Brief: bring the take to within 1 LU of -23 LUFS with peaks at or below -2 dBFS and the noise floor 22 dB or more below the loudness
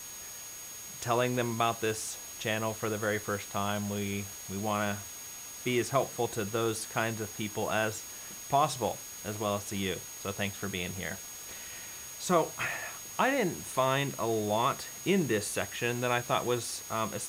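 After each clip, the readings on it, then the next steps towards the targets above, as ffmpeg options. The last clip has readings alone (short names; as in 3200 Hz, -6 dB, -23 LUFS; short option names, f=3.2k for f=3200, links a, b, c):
steady tone 6600 Hz; tone level -44 dBFS; noise floor -44 dBFS; noise floor target -54 dBFS; loudness -32.0 LUFS; peak -13.5 dBFS; loudness target -23.0 LUFS
-> -af "bandreject=f=6.6k:w=30"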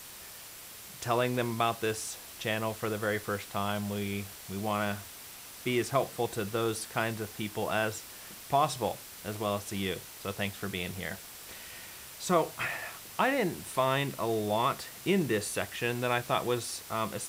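steady tone none; noise floor -47 dBFS; noise floor target -54 dBFS
-> -af "afftdn=nr=7:nf=-47"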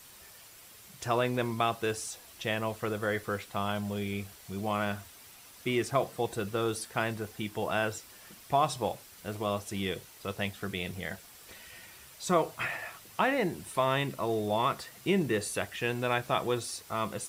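noise floor -53 dBFS; noise floor target -54 dBFS
-> -af "afftdn=nr=6:nf=-53"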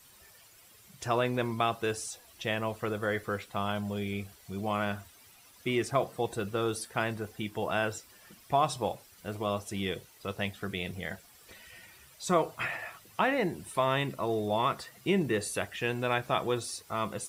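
noise floor -58 dBFS; loudness -32.5 LUFS; peak -13.5 dBFS; loudness target -23.0 LUFS
-> -af "volume=9.5dB"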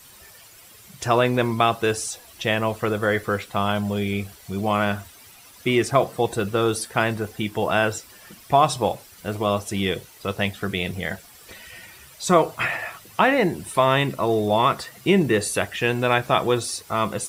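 loudness -23.0 LUFS; peak -4.0 dBFS; noise floor -48 dBFS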